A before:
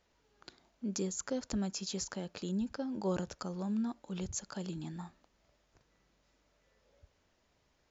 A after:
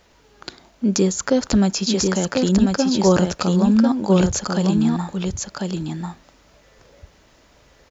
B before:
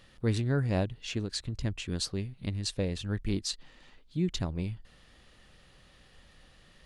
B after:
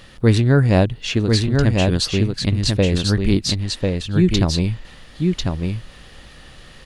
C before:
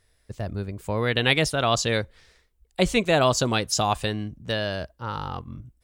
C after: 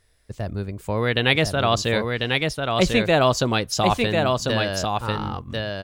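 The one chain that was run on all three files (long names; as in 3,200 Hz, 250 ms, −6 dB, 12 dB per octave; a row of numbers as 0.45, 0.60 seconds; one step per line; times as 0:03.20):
dynamic equaliser 8,000 Hz, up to −7 dB, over −49 dBFS, Q 1.3
on a send: single-tap delay 1,045 ms −3.5 dB
on the sum: normalise the peak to −3 dBFS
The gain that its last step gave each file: +18.5, +14.0, +2.0 decibels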